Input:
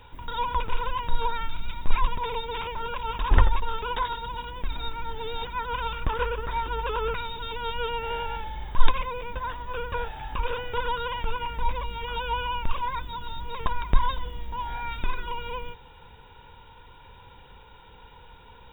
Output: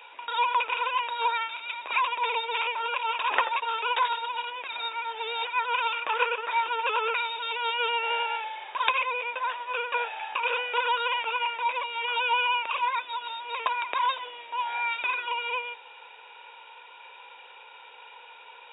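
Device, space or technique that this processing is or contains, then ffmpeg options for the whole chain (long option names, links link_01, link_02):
musical greeting card: -filter_complex "[0:a]asettb=1/sr,asplit=3[link_01][link_02][link_03];[link_01]atrim=end=1.004[link_04];[link_02]atrim=start=1:end=1.93,asetpts=PTS-STARTPTS,afade=type=in:duration=0.004:curve=qsin,afade=type=out:start_time=0.926:duration=0.004:curve=qsin,highpass=160[link_05];[link_03]atrim=start=1.926[link_06];[link_04][link_05]acrossfade=duration=0.004:curve1=hsin:curve2=qsin[link_07];[link_07][link_06]acrossfade=duration=0.004:curve1=qsin:curve2=hsin,aresample=11025,aresample=44100,highpass=frequency=510:width=0.5412,highpass=frequency=510:width=1.3066,equalizer=frequency=2500:width_type=o:width=0.29:gain=11,volume=3dB"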